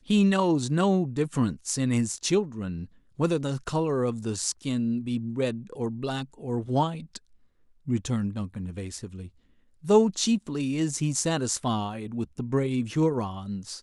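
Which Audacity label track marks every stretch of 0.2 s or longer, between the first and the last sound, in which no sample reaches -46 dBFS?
2.860000	3.190000	silence
7.180000	7.870000	silence
9.290000	9.830000	silence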